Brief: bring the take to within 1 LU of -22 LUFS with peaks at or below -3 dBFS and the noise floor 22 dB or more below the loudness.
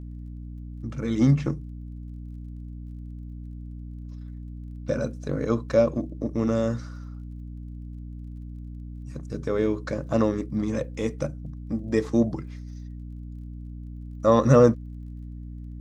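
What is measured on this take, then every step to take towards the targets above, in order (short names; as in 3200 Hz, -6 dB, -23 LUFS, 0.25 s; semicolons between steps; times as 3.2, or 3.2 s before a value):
ticks 27/s; hum 60 Hz; harmonics up to 300 Hz; hum level -35 dBFS; loudness -25.0 LUFS; peak -3.5 dBFS; loudness target -22.0 LUFS
-> de-click; de-hum 60 Hz, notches 5; gain +3 dB; limiter -3 dBFS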